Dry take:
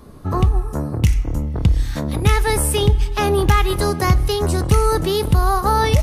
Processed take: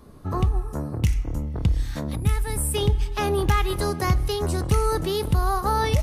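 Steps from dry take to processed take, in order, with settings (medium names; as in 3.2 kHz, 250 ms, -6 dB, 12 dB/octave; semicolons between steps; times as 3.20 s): time-frequency box 2.15–2.74 s, 300–7200 Hz -8 dB; trim -6 dB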